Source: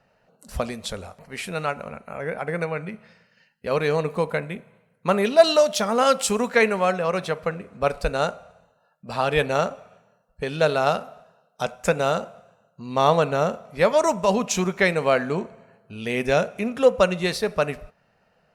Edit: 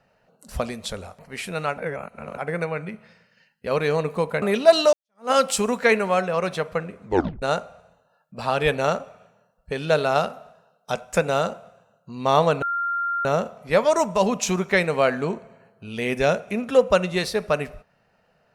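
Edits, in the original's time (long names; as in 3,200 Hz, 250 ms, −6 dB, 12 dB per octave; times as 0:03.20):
0:01.78–0:02.38: reverse
0:04.42–0:05.13: remove
0:05.64–0:06.02: fade in exponential
0:07.75: tape stop 0.38 s
0:13.33: insert tone 1,390 Hz −22 dBFS 0.63 s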